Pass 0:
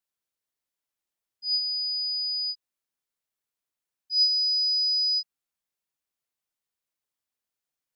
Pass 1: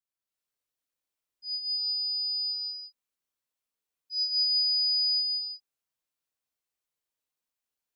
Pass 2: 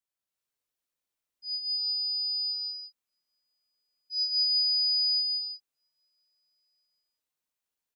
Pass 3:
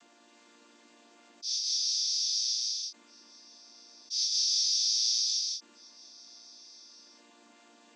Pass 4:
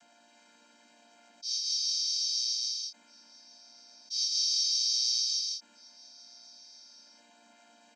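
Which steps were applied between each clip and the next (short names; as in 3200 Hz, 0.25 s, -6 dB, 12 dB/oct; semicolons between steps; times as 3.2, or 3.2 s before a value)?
non-linear reverb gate 0.38 s rising, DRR -6 dB; gain -8 dB
outdoor echo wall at 280 m, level -28 dB
chord vocoder major triad, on A#3; fast leveller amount 50%; gain -2 dB
comb 1.3 ms, depth 84%; gain -3 dB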